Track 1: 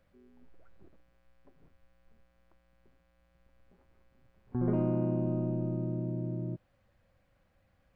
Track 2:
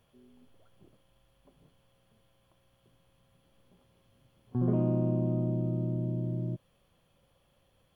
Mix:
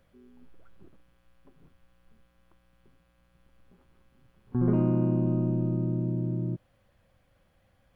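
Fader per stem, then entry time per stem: +3.0 dB, -6.5 dB; 0.00 s, 0.00 s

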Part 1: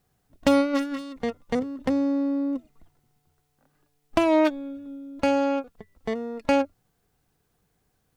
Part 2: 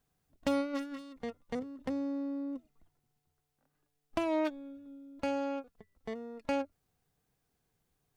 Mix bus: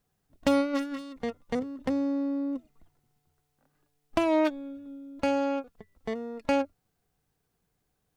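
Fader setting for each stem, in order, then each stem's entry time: -8.0 dB, -2.5 dB; 0.00 s, 0.00 s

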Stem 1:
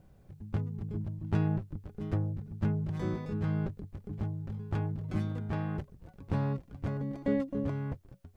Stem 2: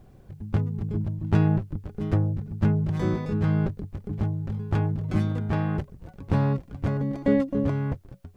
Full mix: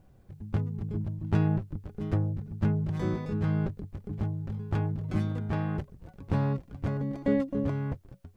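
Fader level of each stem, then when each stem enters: -2.0 dB, -11.0 dB; 0.00 s, 0.00 s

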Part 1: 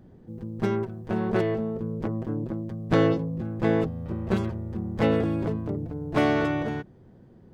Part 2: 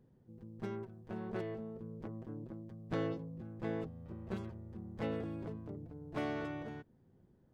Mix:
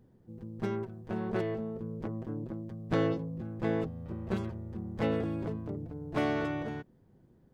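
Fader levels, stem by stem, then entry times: -14.5 dB, +2.5 dB; 0.00 s, 0.00 s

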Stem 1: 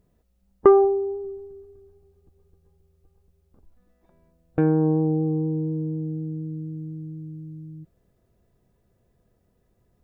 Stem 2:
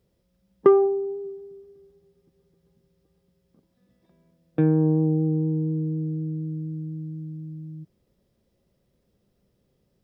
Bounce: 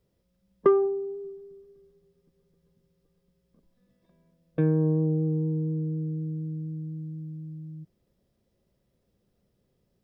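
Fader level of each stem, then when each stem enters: -15.5 dB, -3.5 dB; 0.00 s, 0.00 s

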